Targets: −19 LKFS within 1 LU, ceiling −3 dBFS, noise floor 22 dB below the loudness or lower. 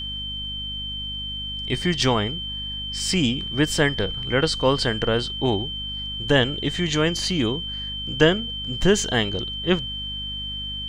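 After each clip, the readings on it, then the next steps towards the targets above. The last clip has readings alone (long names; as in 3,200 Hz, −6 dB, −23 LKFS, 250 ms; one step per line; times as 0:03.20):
mains hum 50 Hz; hum harmonics up to 250 Hz; level of the hum −34 dBFS; interfering tone 3,100 Hz; level of the tone −29 dBFS; integrated loudness −23.5 LKFS; sample peak −3.5 dBFS; target loudness −19.0 LKFS
→ mains-hum notches 50/100/150/200/250 Hz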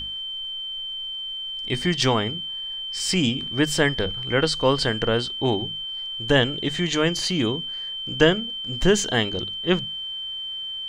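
mains hum none found; interfering tone 3,100 Hz; level of the tone −29 dBFS
→ notch filter 3,100 Hz, Q 30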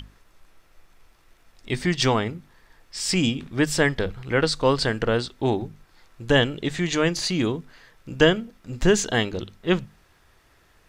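interfering tone none found; integrated loudness −23.5 LKFS; sample peak −4.0 dBFS; target loudness −19.0 LKFS
→ level +4.5 dB
brickwall limiter −3 dBFS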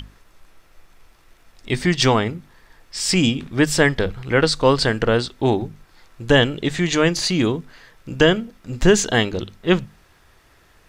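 integrated loudness −19.0 LKFS; sample peak −3.0 dBFS; background noise floor −55 dBFS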